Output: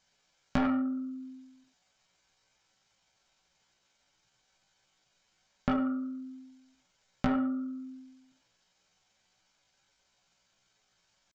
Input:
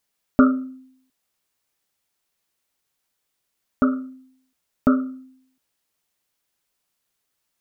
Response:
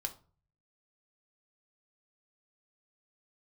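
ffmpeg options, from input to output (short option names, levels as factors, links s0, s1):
-filter_complex "[0:a]aresample=16000,asoftclip=type=tanh:threshold=0.158,aresample=44100[s0];[1:a]atrim=start_sample=2205,atrim=end_sample=3969[s1];[s0][s1]afir=irnorm=-1:irlink=0,acompressor=threshold=0.00891:ratio=2.5,atempo=0.67,volume=2.66"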